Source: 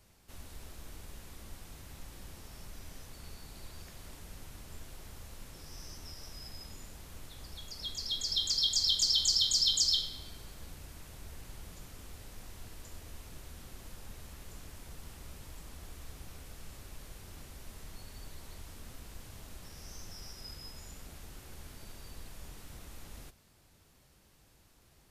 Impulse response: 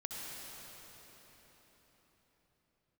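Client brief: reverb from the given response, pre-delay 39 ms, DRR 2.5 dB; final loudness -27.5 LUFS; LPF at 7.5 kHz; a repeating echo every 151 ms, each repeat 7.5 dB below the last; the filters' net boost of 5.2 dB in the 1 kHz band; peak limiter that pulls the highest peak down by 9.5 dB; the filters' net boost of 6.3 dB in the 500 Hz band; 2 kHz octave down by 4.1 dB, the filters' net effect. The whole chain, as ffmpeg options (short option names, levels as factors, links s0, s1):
-filter_complex "[0:a]lowpass=7500,equalizer=f=500:t=o:g=6.5,equalizer=f=1000:t=o:g=6.5,equalizer=f=2000:t=o:g=-8,alimiter=level_in=1.26:limit=0.0631:level=0:latency=1,volume=0.794,aecho=1:1:151|302|453|604|755:0.422|0.177|0.0744|0.0312|0.0131,asplit=2[s0][s1];[1:a]atrim=start_sample=2205,adelay=39[s2];[s1][s2]afir=irnorm=-1:irlink=0,volume=0.668[s3];[s0][s3]amix=inputs=2:normalize=0,volume=3.98"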